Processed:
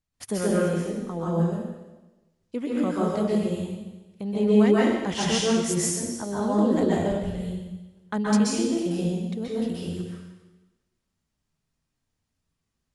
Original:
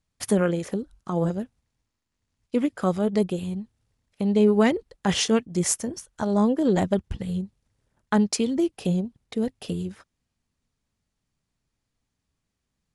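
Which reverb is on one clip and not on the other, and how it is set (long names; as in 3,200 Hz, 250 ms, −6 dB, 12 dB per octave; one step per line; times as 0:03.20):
dense smooth reverb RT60 1.1 s, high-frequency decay 1×, pre-delay 115 ms, DRR −6.5 dB
level −7.5 dB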